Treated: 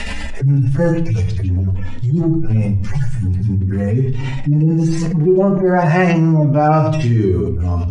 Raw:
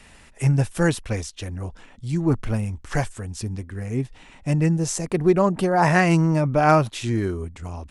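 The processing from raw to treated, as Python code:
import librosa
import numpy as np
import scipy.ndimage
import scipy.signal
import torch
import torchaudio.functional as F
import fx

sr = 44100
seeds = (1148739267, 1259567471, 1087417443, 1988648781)

y = fx.hpss_only(x, sr, part='harmonic')
y = scipy.signal.sosfilt(scipy.signal.butter(2, 5700.0, 'lowpass', fs=sr, output='sos'), y)
y = fx.peak_eq(y, sr, hz=1100.0, db=-2.5, octaves=0.77)
y = fx.room_shoebox(y, sr, seeds[0], volume_m3=44.0, walls='mixed', distance_m=0.35)
y = fx.env_flatten(y, sr, amount_pct=70)
y = y * 10.0 ** (-2.0 / 20.0)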